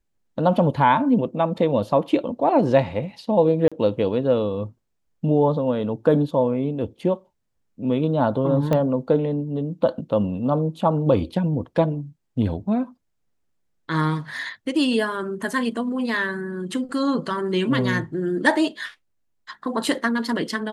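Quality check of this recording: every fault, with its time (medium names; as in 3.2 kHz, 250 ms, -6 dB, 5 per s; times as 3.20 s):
3.68–3.72 s: dropout 36 ms
8.73 s: pop -10 dBFS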